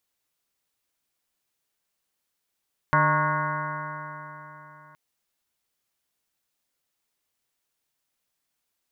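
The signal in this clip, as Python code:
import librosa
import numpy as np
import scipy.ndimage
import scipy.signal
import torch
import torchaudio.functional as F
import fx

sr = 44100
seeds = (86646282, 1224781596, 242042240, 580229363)

y = fx.additive_stiff(sr, length_s=2.02, hz=150.0, level_db=-23.5, upper_db=(-10, -19.0, -4.0, -18.0, 0.0, 3.0, -12.5, 0, -6.0, -9.0, -10.0), decay_s=3.66, stiffness=0.0019)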